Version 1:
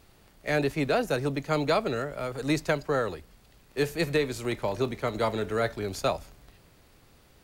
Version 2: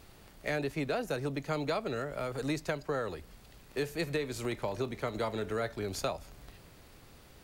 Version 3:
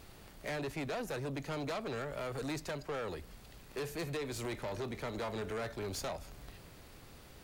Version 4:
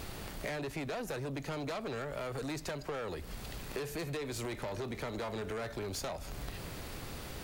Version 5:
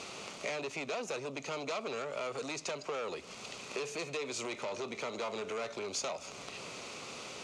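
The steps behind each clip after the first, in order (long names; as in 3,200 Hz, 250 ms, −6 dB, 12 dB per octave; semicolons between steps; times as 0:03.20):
downward compressor 2.5 to 1, threshold −37 dBFS, peak gain reduction 11.5 dB; level +2.5 dB
soft clipping −35.5 dBFS, distortion −8 dB; level +1 dB
downward compressor 12 to 1, threshold −48 dBFS, peak gain reduction 12 dB; level +11.5 dB
loudspeaker in its box 290–7,900 Hz, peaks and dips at 310 Hz −6 dB, 800 Hz −3 dB, 1,200 Hz +3 dB, 1,700 Hz −10 dB, 2,500 Hz +6 dB, 6,400 Hz +6 dB; level +2.5 dB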